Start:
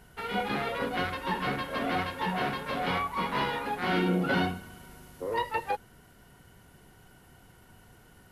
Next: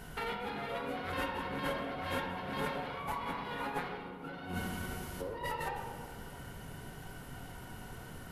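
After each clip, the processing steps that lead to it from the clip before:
compressor whose output falls as the input rises −40 dBFS, ratio −1
on a send at −2 dB: convolution reverb RT60 2.4 s, pre-delay 4 ms
on the sum: level −1.5 dB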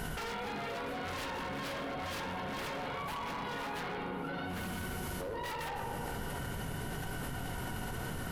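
wave folding −34.5 dBFS
envelope flattener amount 100%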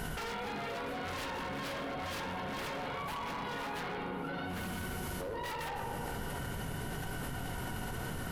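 no processing that can be heard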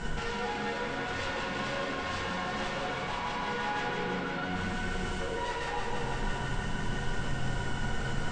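Butterworth low-pass 8,300 Hz 72 dB per octave
feedback echo with a high-pass in the loop 167 ms, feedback 85%, high-pass 570 Hz, level −5 dB
rectangular room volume 31 cubic metres, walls mixed, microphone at 0.68 metres
level −1.5 dB

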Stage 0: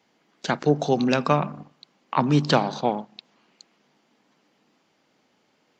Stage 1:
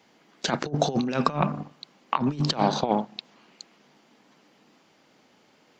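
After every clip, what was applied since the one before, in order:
compressor whose output falls as the input rises −25 dBFS, ratio −0.5
level +1.5 dB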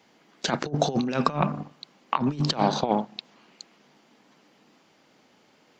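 no processing that can be heard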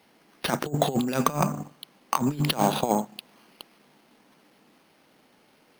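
bad sample-rate conversion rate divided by 6×, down none, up hold

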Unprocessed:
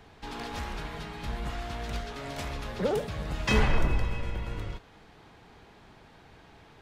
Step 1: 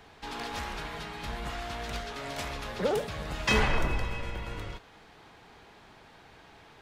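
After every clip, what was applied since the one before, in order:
low-shelf EQ 360 Hz −7 dB
level +2.5 dB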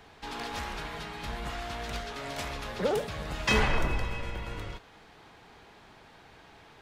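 no processing that can be heard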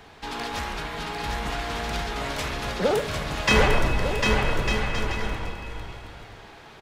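bouncing-ball delay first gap 750 ms, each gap 0.6×, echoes 5
level +5.5 dB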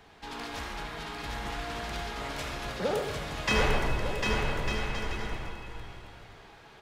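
convolution reverb RT60 0.60 s, pre-delay 67 ms, DRR 5 dB
level −7.5 dB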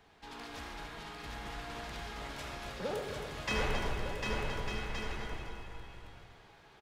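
single-tap delay 270 ms −8 dB
level −7.5 dB

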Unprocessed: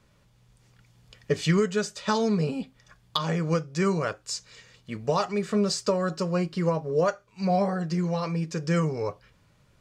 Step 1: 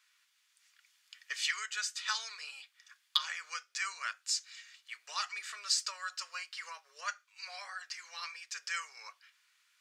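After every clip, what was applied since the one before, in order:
high-pass filter 1,500 Hz 24 dB per octave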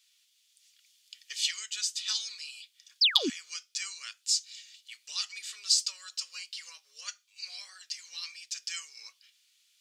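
sound drawn into the spectrogram fall, 0:03.01–0:03.30, 220–5,600 Hz −26 dBFS
drawn EQ curve 340 Hz 0 dB, 680 Hz −13 dB, 1,600 Hz −11 dB, 3,200 Hz +8 dB
level −2 dB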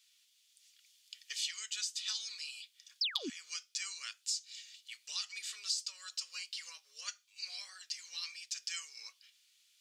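downward compressor 3 to 1, threshold −34 dBFS, peak gain reduction 13 dB
level −1.5 dB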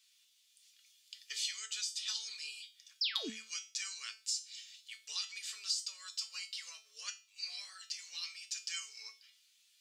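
tuned comb filter 220 Hz, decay 0.33 s, harmonics all, mix 80%
level +10 dB

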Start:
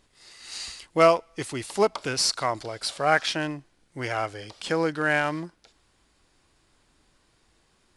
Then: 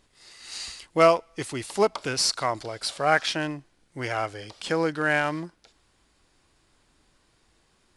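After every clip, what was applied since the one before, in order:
no processing that can be heard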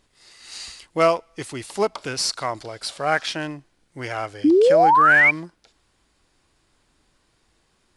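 sound drawn into the spectrogram rise, 0:04.44–0:05.31, 280–2,400 Hz −14 dBFS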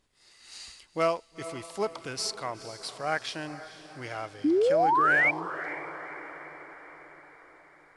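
feedback delay with all-pass diffusion 475 ms, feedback 57%, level −14 dB
level −8.5 dB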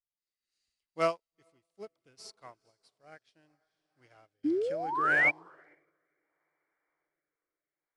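rotating-speaker cabinet horn 0.7 Hz
expander for the loud parts 2.5 to 1, over −45 dBFS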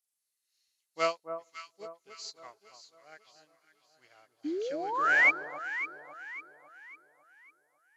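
hearing-aid frequency compression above 3,600 Hz 1.5 to 1
RIAA equalisation recording
delay that swaps between a low-pass and a high-pass 275 ms, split 1,200 Hz, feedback 63%, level −8 dB

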